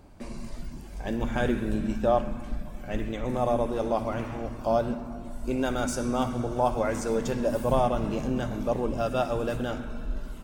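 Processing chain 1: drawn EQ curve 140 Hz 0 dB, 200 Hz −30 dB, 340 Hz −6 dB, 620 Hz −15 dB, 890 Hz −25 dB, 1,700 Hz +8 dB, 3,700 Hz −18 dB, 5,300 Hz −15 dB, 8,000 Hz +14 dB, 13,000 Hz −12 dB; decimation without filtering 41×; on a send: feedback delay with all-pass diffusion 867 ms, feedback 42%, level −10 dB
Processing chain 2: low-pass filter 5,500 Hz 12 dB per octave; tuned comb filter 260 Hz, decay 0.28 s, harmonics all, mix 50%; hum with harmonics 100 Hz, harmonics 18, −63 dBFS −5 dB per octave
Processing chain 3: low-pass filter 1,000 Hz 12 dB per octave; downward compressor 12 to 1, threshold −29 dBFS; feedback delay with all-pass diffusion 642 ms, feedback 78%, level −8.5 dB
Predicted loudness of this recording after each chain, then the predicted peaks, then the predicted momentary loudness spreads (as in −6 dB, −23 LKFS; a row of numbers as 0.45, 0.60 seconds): −36.0, −34.0, −34.5 LKFS; −17.0, −16.0, −19.5 dBFS; 8, 13, 5 LU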